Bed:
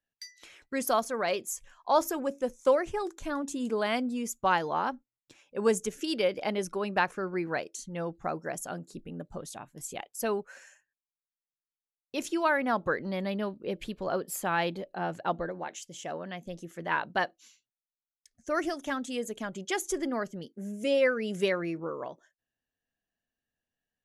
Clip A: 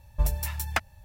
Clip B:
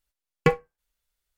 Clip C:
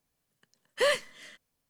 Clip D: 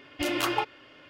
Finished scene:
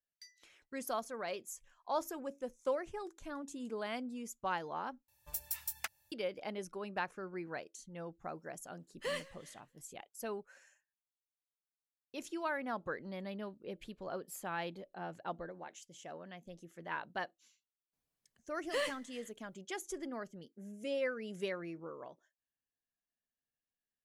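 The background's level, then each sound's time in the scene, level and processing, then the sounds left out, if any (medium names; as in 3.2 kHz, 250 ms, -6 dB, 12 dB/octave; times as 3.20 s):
bed -11 dB
5.08 s: replace with A -17.5 dB + tilt EQ +4 dB/octave
8.24 s: add C -13 dB + modulated delay 161 ms, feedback 36%, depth 110 cents, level -22.5 dB
17.93 s: add C -10 dB
not used: B, D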